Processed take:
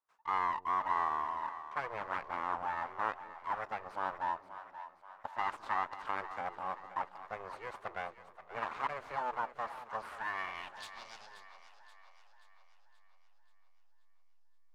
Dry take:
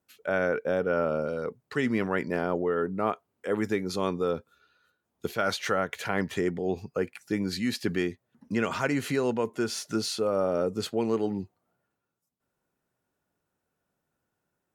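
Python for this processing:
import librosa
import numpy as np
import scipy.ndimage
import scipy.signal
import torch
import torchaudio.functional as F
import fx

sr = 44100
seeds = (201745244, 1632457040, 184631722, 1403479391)

p1 = np.abs(x)
p2 = fx.filter_sweep_bandpass(p1, sr, from_hz=1100.0, to_hz=5000.0, start_s=9.99, end_s=11.07, q=2.8)
p3 = fx.backlash(p2, sr, play_db=-38.5)
p4 = p2 + F.gain(torch.from_numpy(p3), -7.0).numpy()
y = fx.echo_split(p4, sr, split_hz=560.0, low_ms=216, high_ms=530, feedback_pct=52, wet_db=-12.5)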